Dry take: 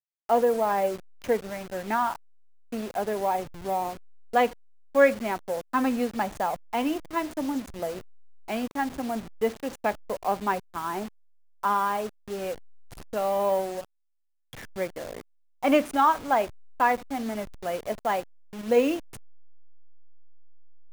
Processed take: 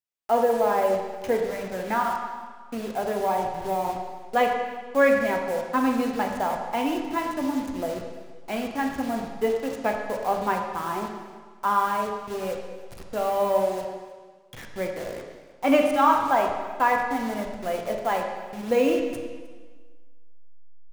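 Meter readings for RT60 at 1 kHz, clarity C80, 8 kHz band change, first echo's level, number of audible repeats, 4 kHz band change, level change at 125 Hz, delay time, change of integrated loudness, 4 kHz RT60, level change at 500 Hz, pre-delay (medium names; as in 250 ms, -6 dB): 1.5 s, 5.5 dB, +1.0 dB, -21.0 dB, 1, +2.0 dB, +2.5 dB, 309 ms, +2.0 dB, 1.4 s, +2.0 dB, 6 ms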